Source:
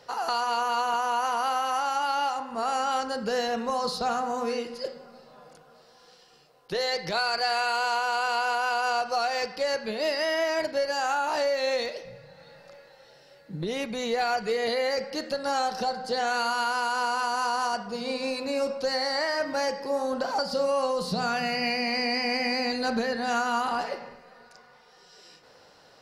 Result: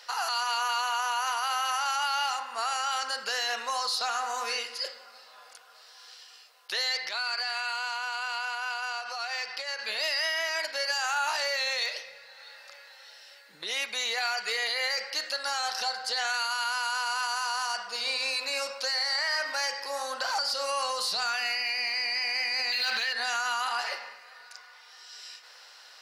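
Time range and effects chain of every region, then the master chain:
0:06.97–0:09.79: high-shelf EQ 5,900 Hz −7.5 dB + downward compressor 12 to 1, threshold −31 dBFS
0:22.72–0:23.13: running median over 5 samples + parametric band 3,100 Hz +13.5 dB 1.8 octaves
whole clip: high-pass filter 1,500 Hz 12 dB per octave; brickwall limiter −28.5 dBFS; level +8.5 dB

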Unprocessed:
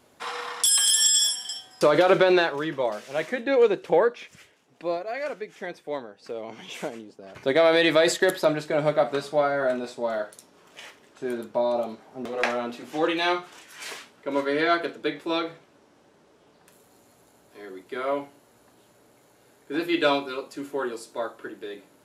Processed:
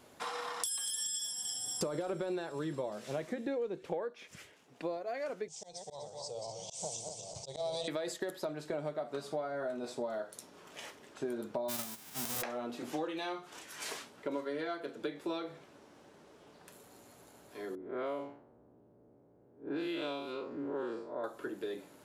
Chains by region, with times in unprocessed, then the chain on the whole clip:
0:00.72–0:03.88: low-shelf EQ 260 Hz +11 dB + delay with a high-pass on its return 233 ms, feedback 63%, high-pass 4,400 Hz, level −11.5 dB
0:05.48–0:07.88: feedback delay that plays each chunk backwards 124 ms, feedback 67%, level −6 dB + drawn EQ curve 150 Hz 0 dB, 260 Hz −27 dB, 540 Hz −7 dB, 860 Hz −3 dB, 1,600 Hz −29 dB, 5,300 Hz +11 dB, 8,400 Hz +13 dB, 12,000 Hz −17 dB + volume swells 167 ms
0:11.68–0:12.41: spectral envelope flattened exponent 0.1 + notch filter 4,300 Hz, Q 21
0:17.75–0:21.24: spectrum smeared in time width 136 ms + low-pass that shuts in the quiet parts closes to 440 Hz, open at −24.5 dBFS + dynamic equaliser 2,900 Hz, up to +6 dB, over −46 dBFS, Q 1.5
whole clip: downward compressor 12 to 1, threshold −33 dBFS; dynamic equaliser 2,300 Hz, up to −6 dB, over −52 dBFS, Q 0.79

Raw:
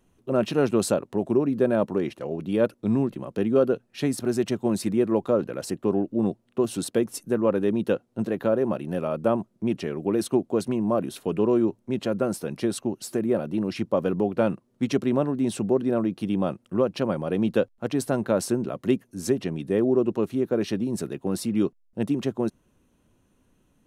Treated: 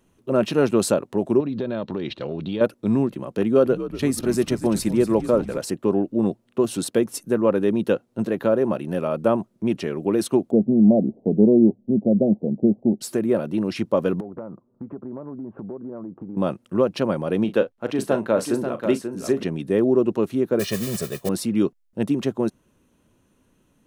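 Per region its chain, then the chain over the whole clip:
0:01.40–0:02.61: low-shelf EQ 120 Hz +11.5 dB + downward compressor 4 to 1, threshold −27 dBFS + low-pass with resonance 3,900 Hz, resonance Q 5
0:03.42–0:05.58: noise gate −38 dBFS, range −12 dB + high-shelf EQ 8,900 Hz +4 dB + echo with shifted repeats 239 ms, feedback 59%, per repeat −81 Hz, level −13 dB
0:10.51–0:13.01: Butterworth low-pass 770 Hz 72 dB per octave + parametric band 210 Hz +10.5 dB 0.52 octaves
0:14.20–0:16.37: Butterworth low-pass 1,300 Hz + downward compressor, threshold −34 dBFS
0:17.44–0:19.43: bass and treble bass −6 dB, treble −6 dB + double-tracking delay 37 ms −12 dB + single-tap delay 537 ms −7 dB
0:20.59–0:21.29: noise that follows the level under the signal 14 dB + comb filter 1.7 ms, depth 73%
whole clip: low-shelf EQ 75 Hz −6.5 dB; notch filter 740 Hz, Q 18; level +3.5 dB

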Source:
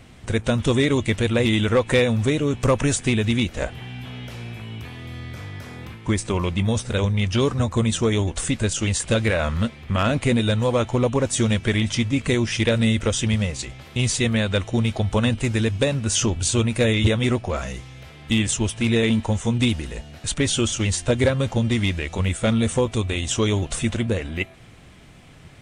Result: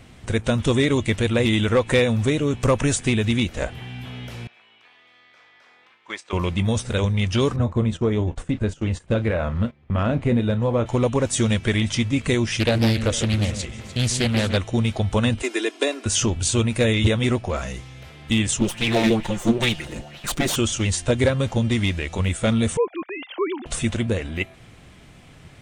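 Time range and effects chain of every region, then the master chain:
0:04.47–0:06.33: band-pass filter 770–4,600 Hz + noise gate −36 dBFS, range −10 dB
0:07.56–0:10.86: low-pass filter 1,000 Hz 6 dB per octave + double-tracking delay 33 ms −13 dB + noise gate −33 dBFS, range −14 dB
0:12.60–0:14.57: delay that swaps between a low-pass and a high-pass 149 ms, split 1,600 Hz, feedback 58%, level −9 dB + highs frequency-modulated by the lows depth 0.61 ms
0:15.42–0:16.06: Butterworth high-pass 290 Hz 48 dB per octave + comb filter 2.9 ms, depth 62%
0:18.60–0:20.56: lower of the sound and its delayed copy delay 5.7 ms + auto-filter bell 2.2 Hz 250–3,400 Hz +12 dB
0:22.77–0:23.66: three sine waves on the formant tracks + low-pass filter 2,400 Hz + low-shelf EQ 320 Hz −11.5 dB
whole clip: no processing

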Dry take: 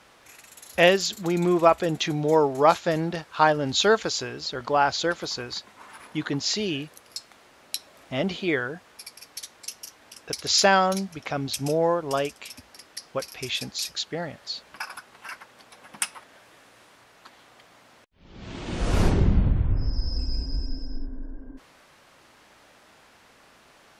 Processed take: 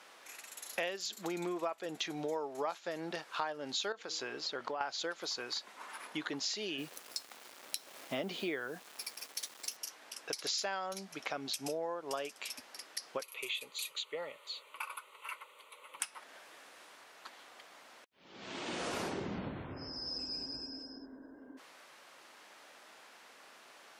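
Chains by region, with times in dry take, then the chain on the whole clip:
0:03.92–0:04.81: high-shelf EQ 5,100 Hz −8 dB + hum removal 159.7 Hz, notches 3 + downward compressor 12 to 1, threshold −26 dBFS
0:06.78–0:09.77: high-pass filter 76 Hz 24 dB per octave + low-shelf EQ 420 Hz +8 dB + bit-depth reduction 8 bits, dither none
0:13.23–0:16.00: high-pass filter 160 Hz 24 dB per octave + parametric band 330 Hz −9 dB 0.39 octaves + phaser with its sweep stopped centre 1,100 Hz, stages 8
whole clip: high-pass filter 270 Hz 12 dB per octave; low-shelf EQ 450 Hz −5.5 dB; downward compressor 6 to 1, threshold −34 dBFS; level −1 dB

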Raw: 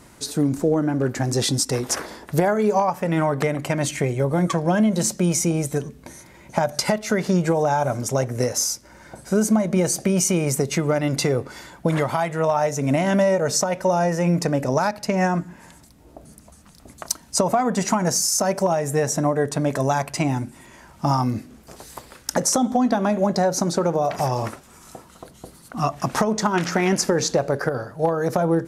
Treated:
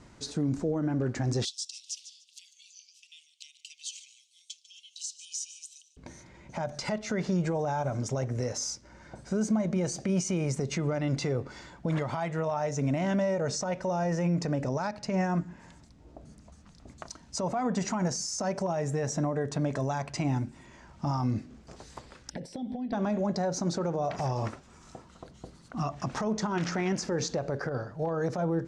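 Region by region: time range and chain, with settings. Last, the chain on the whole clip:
0:01.45–0:05.97: Butterworth high-pass 2,800 Hz 72 dB per octave + repeating echo 147 ms, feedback 23%, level −16 dB
0:22.30–0:22.93: downward compressor 10 to 1, threshold −25 dBFS + phaser with its sweep stopped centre 2,900 Hz, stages 4
whole clip: brickwall limiter −15 dBFS; low-pass filter 7,100 Hz 24 dB per octave; low-shelf EQ 210 Hz +6 dB; level −7.5 dB

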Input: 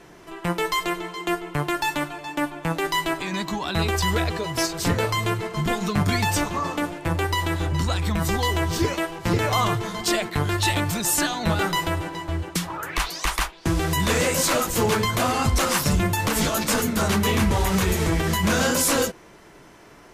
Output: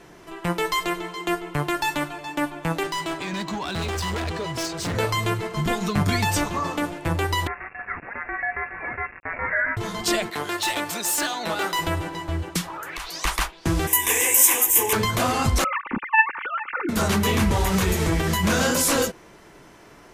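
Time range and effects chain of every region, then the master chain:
0:02.83–0:04.95: high-pass filter 54 Hz + parametric band 13,000 Hz −11.5 dB 0.59 octaves + hard clipping −24.5 dBFS
0:07.47–0:09.77: high-pass filter 620 Hz 24 dB per octave + centre clipping without the shift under −34.5 dBFS + voice inversion scrambler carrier 2,700 Hz
0:10.30–0:11.79: high-pass filter 350 Hz + gain into a clipping stage and back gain 19.5 dB
0:12.61–0:13.14: parametric band 98 Hz −8.5 dB 2.6 octaves + downward compressor 4 to 1, threshold −30 dBFS
0:13.87–0:14.93: RIAA equalisation recording + phaser with its sweep stopped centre 900 Hz, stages 8
0:15.64–0:16.89: three sine waves on the formant tracks + phaser with its sweep stopped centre 1,500 Hz, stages 4 + comb filter 3.4 ms, depth 40%
whole clip: no processing

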